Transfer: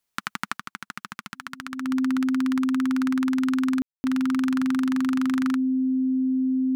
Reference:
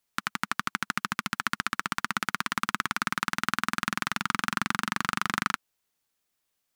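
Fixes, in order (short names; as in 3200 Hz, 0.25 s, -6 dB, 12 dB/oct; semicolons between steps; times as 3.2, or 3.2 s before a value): notch 260 Hz, Q 30; room tone fill 3.82–4.04; gain 0 dB, from 0.57 s +7.5 dB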